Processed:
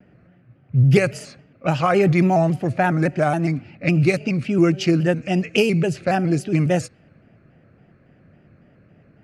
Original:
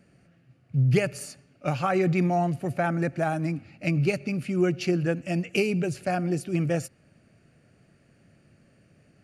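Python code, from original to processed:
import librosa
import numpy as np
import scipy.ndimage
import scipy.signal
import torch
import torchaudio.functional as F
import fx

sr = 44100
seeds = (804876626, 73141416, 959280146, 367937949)

y = fx.env_lowpass(x, sr, base_hz=1900.0, full_db=-20.0)
y = fx.vibrato_shape(y, sr, shape='square', rate_hz=3.6, depth_cents=100.0)
y = y * librosa.db_to_amplitude(7.0)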